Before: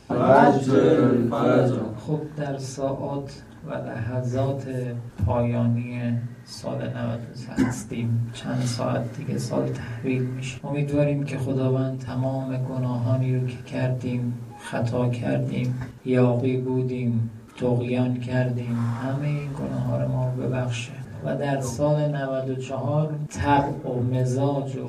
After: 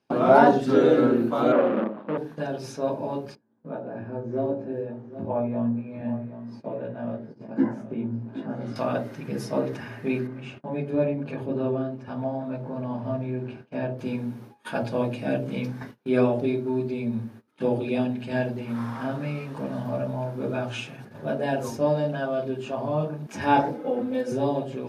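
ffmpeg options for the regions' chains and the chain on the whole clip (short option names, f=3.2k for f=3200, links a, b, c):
-filter_complex "[0:a]asettb=1/sr,asplit=3[a][b][c];[a]atrim=end=1.524[d];[b]atrim=start=1.52:end=2.18,asetpts=PTS-STARTPTS,afade=t=in:d=0.004:c=qsin,afade=t=out:st=0.656:d=0.004:c=qsin,acrusher=bits=5:dc=4:mix=0:aa=0.000001,asoftclip=type=hard:threshold=-22dB,highpass=f=170:w=0.5412,highpass=f=170:w=1.3066,equalizer=f=210:t=q:w=4:g=9,equalizer=f=320:t=q:w=4:g=4,equalizer=f=560:t=q:w=4:g=10,equalizer=f=1.2k:t=q:w=4:g=6,equalizer=f=2.1k:t=q:w=4:g=-4,lowpass=f=2.5k:w=0.5412,lowpass=f=2.5k:w=1.3066[e];[c]atrim=start=2.176[f];[d][e]acrossfade=d=0.004:c1=hsin:c2=qsin[g];[g][f]acrossfade=d=0.004:c1=qsin:c2=hsin,asettb=1/sr,asplit=3[h][i][j];[h]atrim=end=3.354[k];[i]atrim=start=3.35:end=8.76,asetpts=PTS-STARTPTS,afade=t=in:d=0.004:c=qsin,afade=t=out:st=5.406:d=0.004:c=qsin,bandpass=f=300:t=q:w=0.64,asplit=2[l][m];[m]adelay=18,volume=-4dB[n];[l][n]amix=inputs=2:normalize=0,atrim=end_sample=238581,aecho=1:1:771:0.237,atrim=end_sample=238581[o];[j]atrim=start=8.756[p];[k][o]acrossfade=d=0.004:c1=hsin:c2=qsin[q];[q][p]acrossfade=d=0.004:c1=qsin:c2=hsin,asettb=1/sr,asplit=3[r][s][t];[r]atrim=end=10.274[u];[s]atrim=start=10.27:end=13.99,asetpts=PTS-STARTPTS,afade=t=in:d=0.004:c=qsin,afade=t=out:st=3.716:d=0.004:c=qsin,lowpass=f=1.4k:p=1,lowshelf=f=180:g=-2.5[v];[t]atrim=start=13.986[w];[u][v]acrossfade=d=0.004:c1=hsin:c2=qsin[x];[x][w]acrossfade=d=0.004:c1=qsin:c2=hsin,asettb=1/sr,asplit=3[y][z][aa];[y]atrim=end=23.744[ab];[z]atrim=start=23.74:end=24.32,asetpts=PTS-STARTPTS,afade=t=in:d=0.004:c=qsin,afade=t=out:st=0.576:d=0.004:c=qsin,bass=f=250:g=-6,treble=f=4k:g=-3,aecho=1:1:3.9:0.89,atrim=end_sample=25578[ac];[aa]atrim=start=24.316[ad];[ab][ac]acrossfade=d=0.004:c1=hsin:c2=qsin[ae];[ae][ad]acrossfade=d=0.004:c1=qsin:c2=hsin,agate=range=-23dB:threshold=-37dB:ratio=16:detection=peak,highpass=200,equalizer=f=7.5k:t=o:w=0.56:g=-11.5"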